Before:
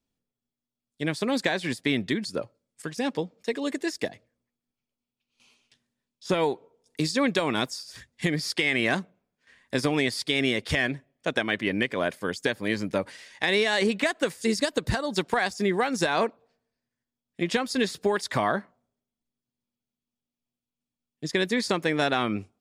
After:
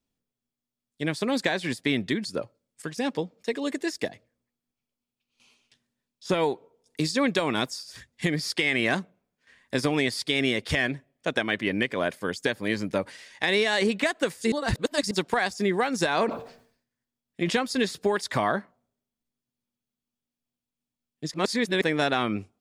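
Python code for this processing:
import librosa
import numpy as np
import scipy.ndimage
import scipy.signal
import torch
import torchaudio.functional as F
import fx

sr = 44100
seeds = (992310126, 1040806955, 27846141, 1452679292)

y = fx.sustainer(x, sr, db_per_s=100.0, at=(16.08, 17.66))
y = fx.edit(y, sr, fx.reverse_span(start_s=14.52, length_s=0.59),
    fx.reverse_span(start_s=21.34, length_s=0.48), tone=tone)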